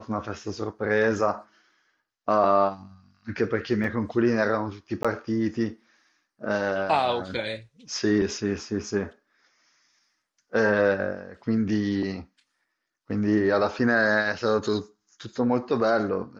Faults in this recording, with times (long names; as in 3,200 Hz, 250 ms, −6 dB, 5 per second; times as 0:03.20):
0:03.84: drop-out 2.8 ms
0:05.03–0:05.05: drop-out 16 ms